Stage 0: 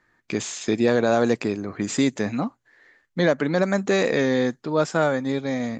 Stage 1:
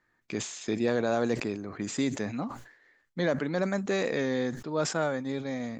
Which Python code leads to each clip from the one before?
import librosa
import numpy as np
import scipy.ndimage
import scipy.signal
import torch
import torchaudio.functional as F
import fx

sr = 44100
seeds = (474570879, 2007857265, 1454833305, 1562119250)

y = fx.sustainer(x, sr, db_per_s=94.0)
y = F.gain(torch.from_numpy(y), -8.0).numpy()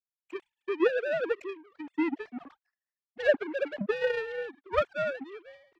y = fx.sine_speech(x, sr)
y = fx.power_curve(y, sr, exponent=2.0)
y = F.gain(torch.from_numpy(y), 6.0).numpy()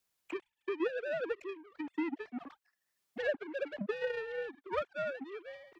y = fx.band_squash(x, sr, depth_pct=70)
y = F.gain(torch.from_numpy(y), -6.5).numpy()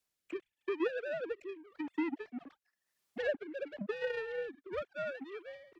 y = fx.rotary(x, sr, hz=0.9)
y = F.gain(torch.from_numpy(y), 1.0).numpy()